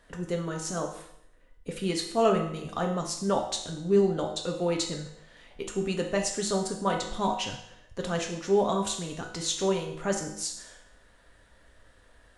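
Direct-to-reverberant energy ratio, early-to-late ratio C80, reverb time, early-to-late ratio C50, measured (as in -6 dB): 0.5 dB, 9.5 dB, 0.75 s, 6.0 dB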